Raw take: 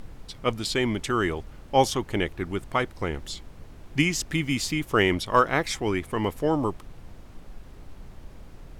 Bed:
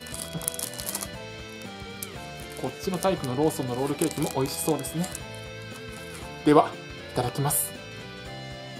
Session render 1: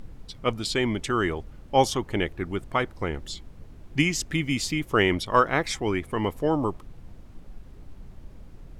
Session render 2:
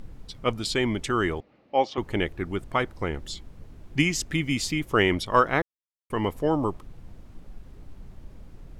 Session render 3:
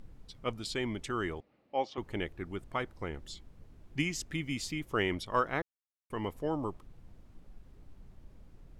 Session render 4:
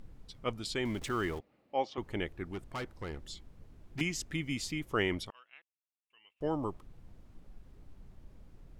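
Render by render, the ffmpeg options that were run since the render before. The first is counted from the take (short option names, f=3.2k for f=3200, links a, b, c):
-af "afftdn=nr=6:nf=-46"
-filter_complex "[0:a]asettb=1/sr,asplit=3[a][b][c];[a]atrim=end=1.404[d];[b]atrim=start=1.4:end=1.98,asetpts=PTS-STARTPTS,afade=t=in:d=0.004:c=qsin,afade=t=out:st=0.576:d=0.004:c=qsin,highpass=340,equalizer=f=400:t=q:w=4:g=-4,equalizer=f=980:t=q:w=4:g=-6,equalizer=f=1.5k:t=q:w=4:g=-10,equalizer=f=3.3k:t=q:w=4:g=-8,lowpass=f=3.8k:w=0.5412,lowpass=f=3.8k:w=1.3066[e];[c]atrim=start=1.976[f];[d][e]acrossfade=d=0.004:c1=hsin:c2=qsin[g];[g][f]acrossfade=d=0.004:c1=qsin:c2=hsin,asplit=3[h][i][j];[h]atrim=end=5.62,asetpts=PTS-STARTPTS,afade=t=out:st=5.616:d=0.004:c=hsin[k];[i]atrim=start=5.62:end=6.1,asetpts=PTS-STARTPTS,volume=0[l];[j]atrim=start=6.1,asetpts=PTS-STARTPTS,afade=t=in:d=0.004:c=hsin[m];[k][l][m]concat=n=3:v=0:a=1"
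-af "volume=-9.5dB"
-filter_complex "[0:a]asettb=1/sr,asplit=3[a][b][c];[a]atrim=end=0.854[d];[b]atrim=start=0.85:end=1.39,asetpts=PTS-STARTPTS,afade=t=in:d=0.004:c=qsin,afade=t=out:st=0.536:d=0.004:c=qsin,aeval=exprs='val(0)+0.5*0.00596*sgn(val(0))':c=same[e];[c]atrim=start=1.386[f];[d][e]acrossfade=d=0.004:c1=hsin:c2=qsin[g];[g][f]acrossfade=d=0.004:c1=qsin:c2=hsin,asettb=1/sr,asplit=3[h][i][j];[h]atrim=end=2.474[k];[i]atrim=start=2.47:end=4.01,asetpts=PTS-STARTPTS,afade=t=in:d=0.004:c=qsin,afade=t=out:st=1.536:d=0.004:c=qsin,volume=34.5dB,asoftclip=hard,volume=-34.5dB[l];[j]atrim=start=4.006[m];[k][l]acrossfade=d=0.004:c1=hsin:c2=qsin[n];[n][m]acrossfade=d=0.004:c1=qsin:c2=hsin,asettb=1/sr,asplit=3[o][p][q];[o]atrim=end=5.304[r];[p]atrim=start=5.3:end=6.41,asetpts=PTS-STARTPTS,afade=t=in:d=0.004:c=qsin,afade=t=out:st=1.106:d=0.004:c=qsin,bandpass=f=2.7k:t=q:w=17[s];[q]atrim=start=6.406[t];[r][s]acrossfade=d=0.004:c1=hsin:c2=qsin[u];[u][t]acrossfade=d=0.004:c1=qsin:c2=hsin"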